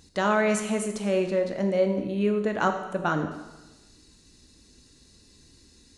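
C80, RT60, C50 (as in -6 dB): 9.5 dB, 1.1 s, 8.0 dB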